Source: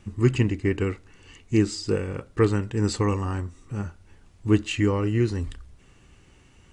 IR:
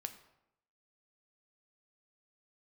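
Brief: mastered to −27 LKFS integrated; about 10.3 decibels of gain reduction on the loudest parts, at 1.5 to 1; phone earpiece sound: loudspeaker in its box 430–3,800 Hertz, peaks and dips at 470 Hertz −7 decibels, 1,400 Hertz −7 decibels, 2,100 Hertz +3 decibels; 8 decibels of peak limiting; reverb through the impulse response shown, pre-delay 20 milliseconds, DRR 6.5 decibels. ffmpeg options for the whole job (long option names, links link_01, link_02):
-filter_complex "[0:a]acompressor=threshold=-44dB:ratio=1.5,alimiter=level_in=1.5dB:limit=-24dB:level=0:latency=1,volume=-1.5dB,asplit=2[link_01][link_02];[1:a]atrim=start_sample=2205,adelay=20[link_03];[link_02][link_03]afir=irnorm=-1:irlink=0,volume=-4dB[link_04];[link_01][link_04]amix=inputs=2:normalize=0,highpass=430,equalizer=frequency=470:width_type=q:width=4:gain=-7,equalizer=frequency=1400:width_type=q:width=4:gain=-7,equalizer=frequency=2100:width_type=q:width=4:gain=3,lowpass=frequency=3800:width=0.5412,lowpass=frequency=3800:width=1.3066,volume=16.5dB"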